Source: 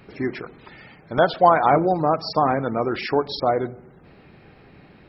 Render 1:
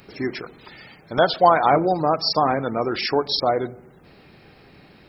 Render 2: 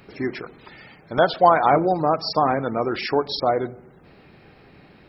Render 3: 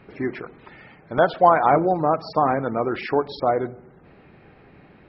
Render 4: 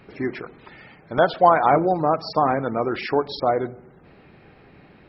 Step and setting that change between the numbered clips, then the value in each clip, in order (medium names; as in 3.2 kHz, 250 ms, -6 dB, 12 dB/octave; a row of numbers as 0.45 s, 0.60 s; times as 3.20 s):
tone controls, treble: +14 dB, +5 dB, -14 dB, -5 dB